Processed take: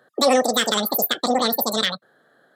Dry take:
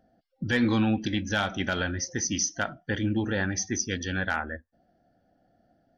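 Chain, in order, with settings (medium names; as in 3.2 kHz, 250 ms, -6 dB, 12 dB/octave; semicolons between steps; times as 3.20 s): high-pass 60 Hz 24 dB/octave; speed mistake 33 rpm record played at 78 rpm; trim +7.5 dB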